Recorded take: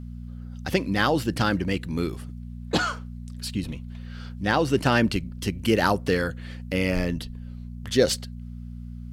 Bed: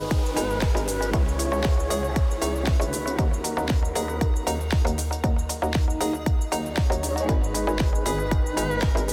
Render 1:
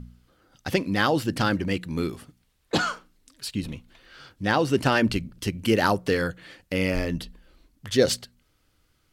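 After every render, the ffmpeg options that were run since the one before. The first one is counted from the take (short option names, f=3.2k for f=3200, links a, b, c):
-af "bandreject=f=60:t=h:w=4,bandreject=f=120:t=h:w=4,bandreject=f=180:t=h:w=4,bandreject=f=240:t=h:w=4"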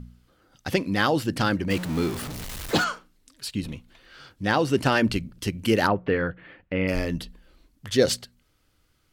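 -filter_complex "[0:a]asettb=1/sr,asplit=3[a][b][c];[a]atrim=end=1.704[d];[b]atrim=start=1.7:end=2.84,asetpts=PTS-STARTPTS,afade=t=in:d=0.004:c=qsin,afade=t=out:st=1.136:d=0.004:c=qsin,aeval=exprs='val(0)+0.5*0.0355*sgn(val(0))':c=same[e];[c]atrim=start=2.836[f];[d][e]acrossfade=d=0.004:c1=hsin:c2=qsin[g];[g][f]acrossfade=d=0.004:c1=qsin:c2=hsin,asplit=3[h][i][j];[h]afade=t=out:st=5.86:d=0.02[k];[i]lowpass=f=2.6k:w=0.5412,lowpass=f=2.6k:w=1.3066,afade=t=in:st=5.86:d=0.02,afade=t=out:st=6.87:d=0.02[l];[j]afade=t=in:st=6.87:d=0.02[m];[k][l][m]amix=inputs=3:normalize=0"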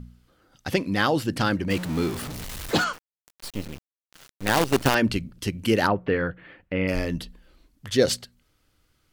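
-filter_complex "[0:a]asettb=1/sr,asplit=3[a][b][c];[a]atrim=end=2.934[d];[b]atrim=start=2.93:end=4.95,asetpts=PTS-STARTPTS,afade=t=in:d=0.004:c=qsin,afade=t=out:st=2.016:d=0.004:c=qsin,acrusher=bits=4:dc=4:mix=0:aa=0.000001[e];[c]atrim=start=4.946[f];[d][e]acrossfade=d=0.004:c1=hsin:c2=qsin[g];[g][f]acrossfade=d=0.004:c1=qsin:c2=hsin"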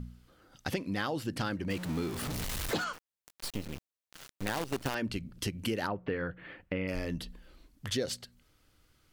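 -af "acompressor=threshold=-32dB:ratio=4"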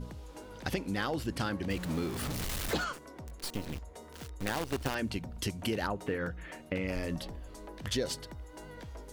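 -filter_complex "[1:a]volume=-23.5dB[a];[0:a][a]amix=inputs=2:normalize=0"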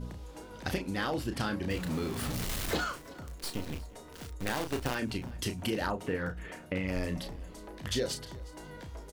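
-filter_complex "[0:a]asplit=2[a][b];[b]adelay=33,volume=-7dB[c];[a][c]amix=inputs=2:normalize=0,aecho=1:1:362|724:0.0841|0.0269"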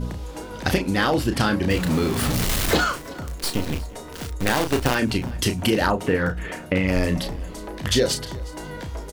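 -af "volume=12dB"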